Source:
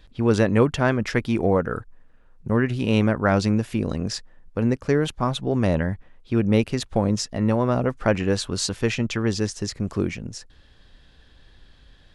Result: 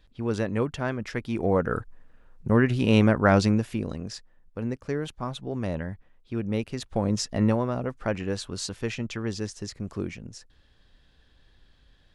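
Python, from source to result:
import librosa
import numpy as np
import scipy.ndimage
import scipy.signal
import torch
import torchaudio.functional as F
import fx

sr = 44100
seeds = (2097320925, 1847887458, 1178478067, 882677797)

y = fx.gain(x, sr, db=fx.line((1.22, -8.5), (1.74, 0.5), (3.39, 0.5), (4.06, -9.0), (6.66, -9.0), (7.42, 0.5), (7.71, -7.5)))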